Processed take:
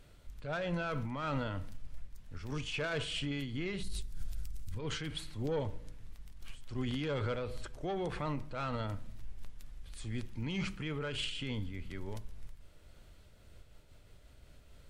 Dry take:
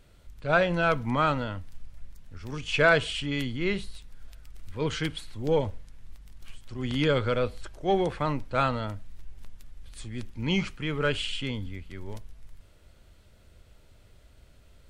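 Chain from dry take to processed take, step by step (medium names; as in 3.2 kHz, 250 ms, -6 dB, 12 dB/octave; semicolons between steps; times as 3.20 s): saturation -18.5 dBFS, distortion -15 dB; 3.83–4.79 s: tone controls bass +12 dB, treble +11 dB; reverberation RT60 0.70 s, pre-delay 7 ms, DRR 16.5 dB; peak limiter -27.5 dBFS, peak gain reduction 11 dB; random flutter of the level, depth 60%; trim +1 dB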